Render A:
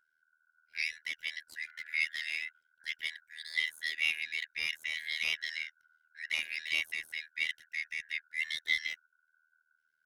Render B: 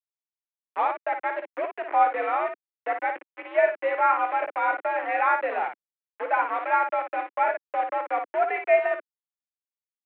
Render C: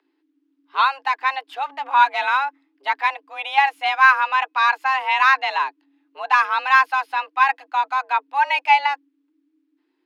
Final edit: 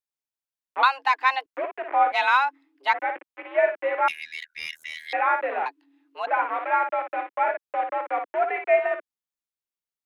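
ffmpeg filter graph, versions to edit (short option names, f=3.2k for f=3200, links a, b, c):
-filter_complex "[2:a]asplit=3[a][b][c];[1:a]asplit=5[d][e][f][g][h];[d]atrim=end=0.832[i];[a]atrim=start=0.828:end=1.462[j];[e]atrim=start=1.458:end=2.122[k];[b]atrim=start=2.118:end=2.942[l];[f]atrim=start=2.938:end=4.082[m];[0:a]atrim=start=4.078:end=5.132[n];[g]atrim=start=5.128:end=5.662[o];[c]atrim=start=5.658:end=6.272[p];[h]atrim=start=6.268[q];[i][j]acrossfade=d=0.004:c1=hsin:c2=hsin[r];[r][k]acrossfade=d=0.004:c1=hsin:c2=hsin[s];[s][l]acrossfade=d=0.004:c1=hsin:c2=hsin[t];[t][m]acrossfade=d=0.004:c1=hsin:c2=hsin[u];[u][n]acrossfade=d=0.004:c1=hsin:c2=hsin[v];[v][o]acrossfade=d=0.004:c1=hsin:c2=hsin[w];[w][p]acrossfade=d=0.004:c1=hsin:c2=hsin[x];[x][q]acrossfade=d=0.004:c1=hsin:c2=hsin"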